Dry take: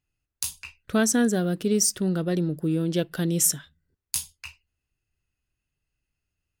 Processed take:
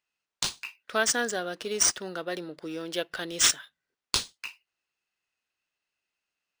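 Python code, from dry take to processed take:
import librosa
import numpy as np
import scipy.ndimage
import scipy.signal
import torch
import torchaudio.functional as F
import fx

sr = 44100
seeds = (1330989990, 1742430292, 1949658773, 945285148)

y = scipy.signal.sosfilt(scipy.signal.butter(2, 700.0, 'highpass', fs=sr, output='sos'), x)
y = np.interp(np.arange(len(y)), np.arange(len(y))[::3], y[::3])
y = y * librosa.db_to_amplitude(3.0)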